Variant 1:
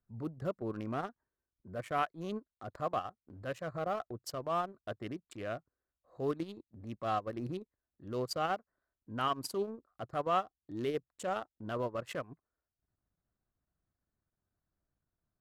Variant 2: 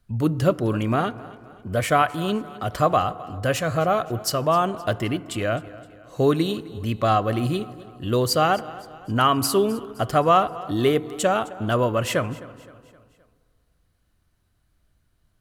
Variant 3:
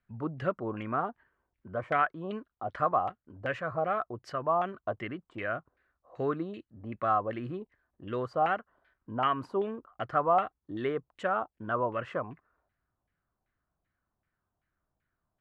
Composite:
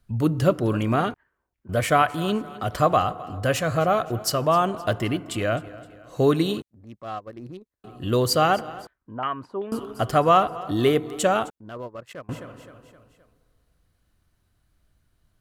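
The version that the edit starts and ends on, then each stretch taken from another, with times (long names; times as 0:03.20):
2
0:01.14–0:01.69: punch in from 3
0:06.62–0:07.84: punch in from 1
0:08.87–0:09.72: punch in from 3
0:11.50–0:12.29: punch in from 1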